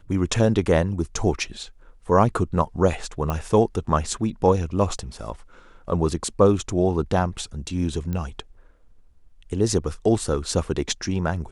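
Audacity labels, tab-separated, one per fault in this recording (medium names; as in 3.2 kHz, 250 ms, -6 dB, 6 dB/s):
3.300000	3.300000	pop -13 dBFS
8.130000	8.130000	pop -17 dBFS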